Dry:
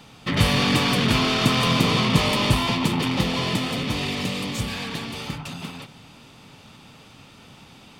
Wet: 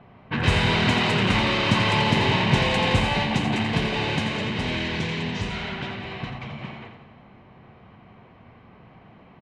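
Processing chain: low-pass opened by the level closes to 1500 Hz, open at -20 dBFS; low shelf 180 Hz -3.5 dB; varispeed -15%; air absorption 76 m; on a send: feedback echo 85 ms, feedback 50%, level -8 dB

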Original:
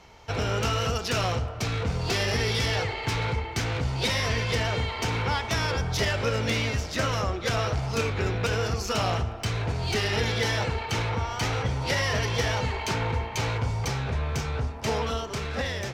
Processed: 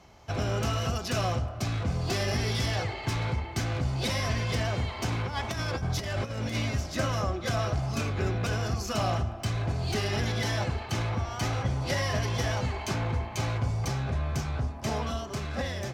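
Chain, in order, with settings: bell 2700 Hz -5 dB 2 oct; 5.12–6.56 negative-ratio compressor -29 dBFS, ratio -0.5; notch comb 460 Hz

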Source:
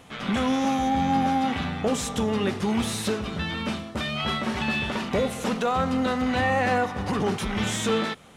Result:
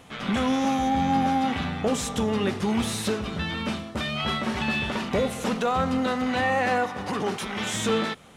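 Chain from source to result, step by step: 5.98–7.73 HPF 130 Hz -> 390 Hz 6 dB/oct

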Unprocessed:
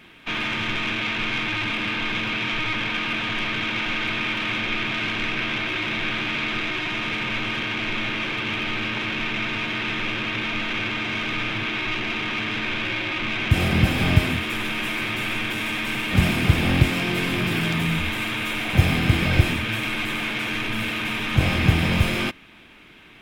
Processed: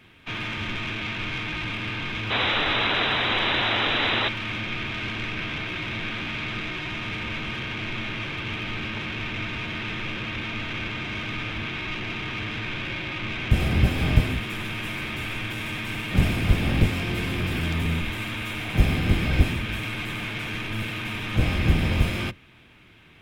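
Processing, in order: octaver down 1 oct, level +3 dB; painted sound noise, 2.3–4.29, 220–4000 Hz -19 dBFS; gain -5.5 dB

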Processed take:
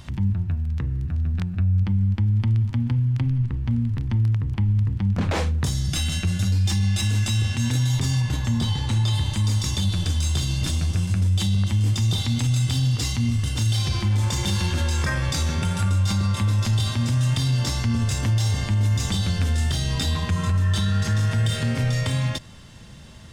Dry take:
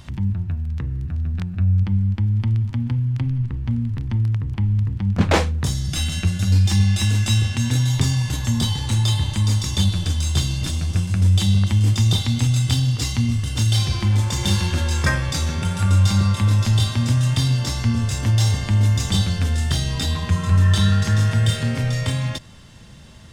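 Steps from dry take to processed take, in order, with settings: 8.2–9.13 high shelf 4500 Hz -> 6400 Hz -10 dB; limiter -14.5 dBFS, peak gain reduction 11 dB

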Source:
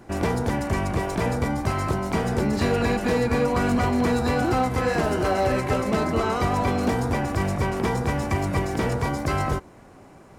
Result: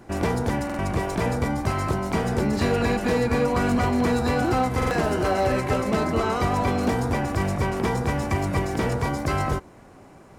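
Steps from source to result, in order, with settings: stuck buffer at 0.65/4.77, samples 2048, times 2

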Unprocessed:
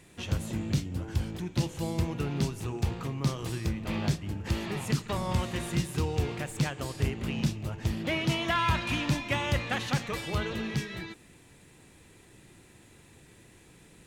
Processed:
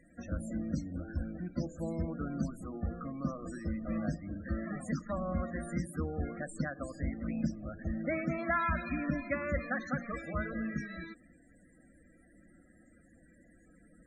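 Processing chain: fixed phaser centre 600 Hz, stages 8; loudest bins only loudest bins 32

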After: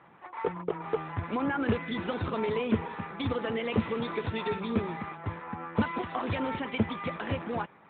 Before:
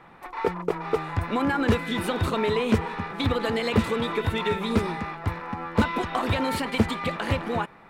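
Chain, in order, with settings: gain -5 dB; AMR-NB 12.2 kbps 8000 Hz

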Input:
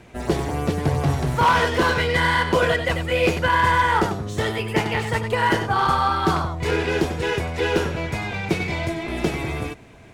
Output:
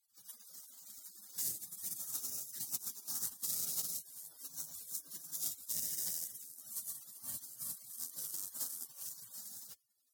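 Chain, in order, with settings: rattling part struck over -29 dBFS, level -19 dBFS; pre-emphasis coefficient 0.97; spectral gate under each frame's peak -30 dB weak; HPF 100 Hz 24 dB/oct; tone controls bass +12 dB, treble +13 dB; compressor 6:1, threshold -46 dBFS, peak gain reduction 14.5 dB; careless resampling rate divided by 2×, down filtered, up zero stuff; gain +11 dB

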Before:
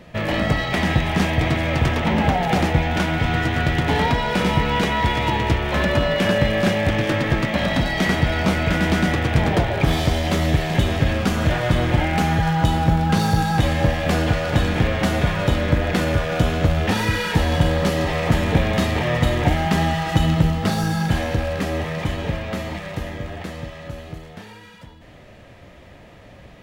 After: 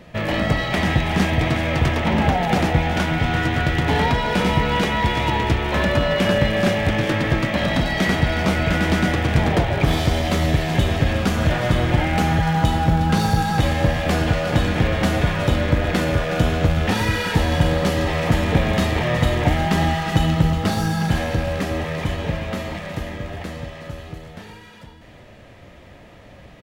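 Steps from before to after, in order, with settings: echo 0.366 s -12 dB

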